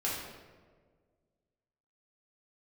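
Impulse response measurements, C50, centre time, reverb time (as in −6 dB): 0.5 dB, 73 ms, 1.6 s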